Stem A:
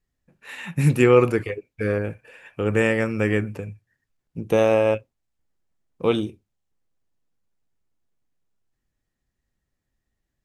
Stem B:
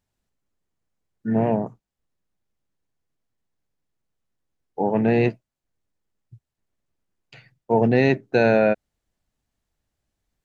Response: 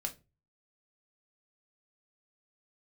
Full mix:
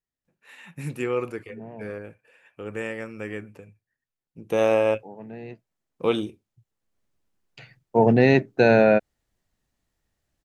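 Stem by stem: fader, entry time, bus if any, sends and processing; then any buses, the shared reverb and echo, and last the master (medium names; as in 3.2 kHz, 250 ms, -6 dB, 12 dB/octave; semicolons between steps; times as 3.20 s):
4.33 s -10.5 dB -> 4.64 s -1 dB, 0.00 s, no send, bass shelf 120 Hz -11 dB
+1.0 dB, 0.25 s, no send, auto duck -21 dB, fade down 0.25 s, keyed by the first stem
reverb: none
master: none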